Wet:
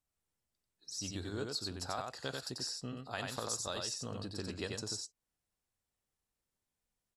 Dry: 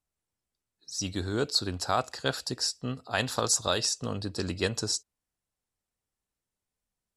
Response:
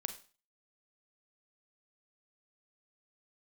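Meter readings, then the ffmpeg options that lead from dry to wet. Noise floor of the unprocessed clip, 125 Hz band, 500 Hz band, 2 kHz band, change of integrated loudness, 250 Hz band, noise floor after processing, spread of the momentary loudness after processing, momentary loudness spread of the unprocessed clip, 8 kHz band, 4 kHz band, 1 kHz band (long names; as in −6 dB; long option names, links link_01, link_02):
below −85 dBFS, −9.5 dB, −10.5 dB, −10.5 dB, −10.0 dB, −9.0 dB, below −85 dBFS, 5 LU, 8 LU, −10.0 dB, −10.0 dB, −11.0 dB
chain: -af "acompressor=threshold=-42dB:ratio=2,aecho=1:1:91:0.668,volume=-2.5dB"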